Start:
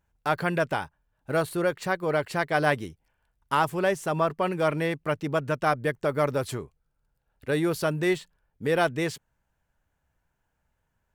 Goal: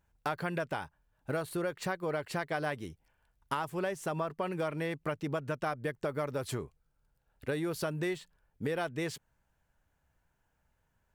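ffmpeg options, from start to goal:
-af "acompressor=threshold=0.0282:ratio=6"

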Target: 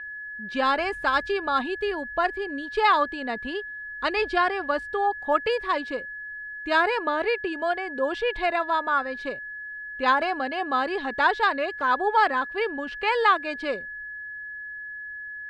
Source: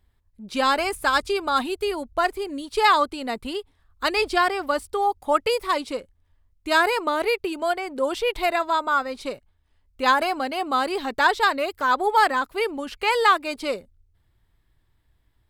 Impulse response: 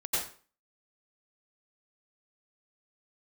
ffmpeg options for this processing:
-af "aeval=exprs='val(0)+0.0251*sin(2*PI*1700*n/s)':c=same,lowpass=3500,volume=0.794"

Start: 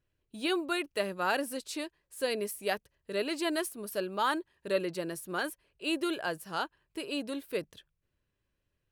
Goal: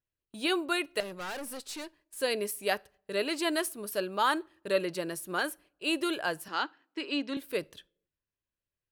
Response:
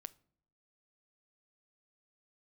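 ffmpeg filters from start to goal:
-filter_complex "[0:a]agate=range=0.2:threshold=0.00126:ratio=16:detection=peak,asettb=1/sr,asplit=3[s0][s1][s2];[s0]atrim=end=1.004[s3];[s1]atrim=start=1:end=2.17,asetpts=PTS-STARTPTS,afade=t=in:d=0.004:c=qsin,afade=t=out:st=1.166:d=0.004:c=qsin,aeval=exprs='(tanh(79.4*val(0)+0.25)-tanh(0.25))/79.4':c=same[s4];[s2]atrim=start=2.166[s5];[s3][s4]acrossfade=d=0.004:c1=hsin:c2=qsin[s6];[s6][s5]acrossfade=d=0.004:c1=qsin:c2=hsin,asettb=1/sr,asplit=3[s7][s8][s9];[s7]atrim=end=6.484[s10];[s8]atrim=start=6.48:end=7.37,asetpts=PTS-STARTPTS,afade=t=in:d=0.004:c=qsin,afade=t=out:st=0.886:d=0.004:c=qsin,highpass=f=230:w=0.5412,highpass=f=230:w=1.3066,equalizer=f=280:t=q:w=4:g=5,equalizer=f=460:t=q:w=4:g=-5,equalizer=f=660:t=q:w=4:g=-7,equalizer=f=2000:t=q:w=4:g=5,lowpass=f=6300:w=0.5412,lowpass=f=6300:w=1.3066[s11];[s9]atrim=start=7.366[s12];[s10][s11]acrossfade=d=0.004:c1=hsin:c2=qsin[s13];[s13][s12]acrossfade=d=0.004:c1=qsin:c2=hsin,asplit=2[s14][s15];[1:a]atrim=start_sample=2205,lowshelf=f=310:g=-12[s16];[s15][s16]afir=irnorm=-1:irlink=0,volume=1.78[s17];[s14][s17]amix=inputs=2:normalize=0,volume=0.75"

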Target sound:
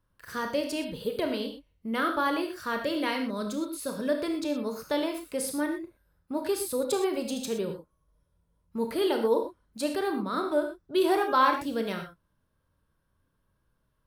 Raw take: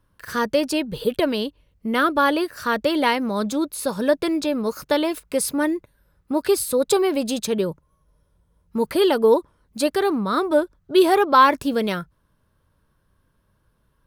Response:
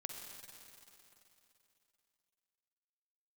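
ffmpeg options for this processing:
-filter_complex "[0:a]asettb=1/sr,asplit=3[s0][s1][s2];[s0]atrim=end=2.774[s3];[s1]atrim=start=2.77:end=4.15,asetpts=PTS-STARTPTS,afade=t=in:d=0.004:c=qsin,afade=t=out:st=1.376:d=0.004:c=qsin,equalizer=f=830:w=5.8:g=-12[s4];[s2]atrim=start=4.146[s5];[s3][s4]acrossfade=d=0.004:c1=hsin:c2=qsin[s6];[s6][s5]acrossfade=d=0.004:c1=qsin:c2=hsin[s7];[1:a]atrim=start_sample=2205,afade=t=out:st=0.28:d=0.01,atrim=end_sample=12789,asetrate=79380,aresample=44100[s8];[s7][s8]afir=irnorm=-1:irlink=0"

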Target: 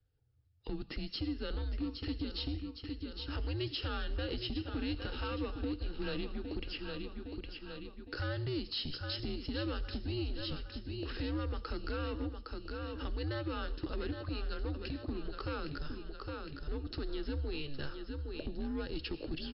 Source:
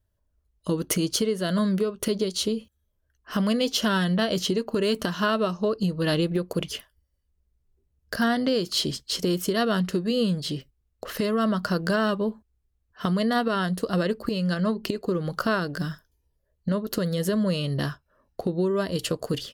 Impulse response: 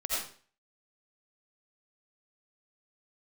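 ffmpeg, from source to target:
-filter_complex "[0:a]aecho=1:1:812|1624|2436|3248:0.282|0.118|0.0497|0.0209,acompressor=threshold=0.0178:ratio=2,asplit=2[s0][s1];[s1]highshelf=f=3000:g=11[s2];[1:a]atrim=start_sample=2205[s3];[s2][s3]afir=irnorm=-1:irlink=0,volume=0.0422[s4];[s0][s4]amix=inputs=2:normalize=0,asoftclip=type=tanh:threshold=0.0447,afreqshift=-140,equalizer=f=200:t=o:w=0.33:g=-7,equalizer=f=315:t=o:w=0.33:g=3,equalizer=f=1000:t=o:w=0.33:g=-11,volume=0.75" -ar 12000 -c:a libmp3lame -b:a 48k

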